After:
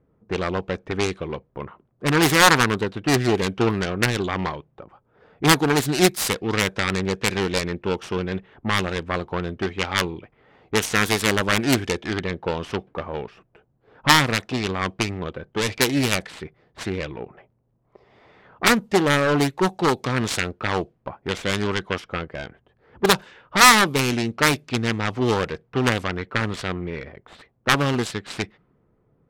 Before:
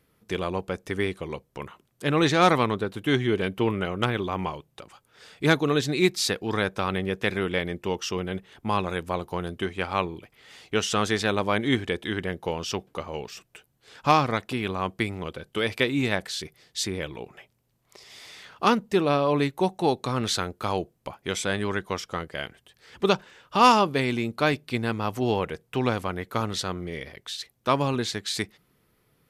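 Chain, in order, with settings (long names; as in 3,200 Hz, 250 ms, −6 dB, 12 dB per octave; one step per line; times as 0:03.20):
phase distortion by the signal itself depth 0.63 ms
low-pass that shuts in the quiet parts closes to 790 Hz, open at −21 dBFS
level +4.5 dB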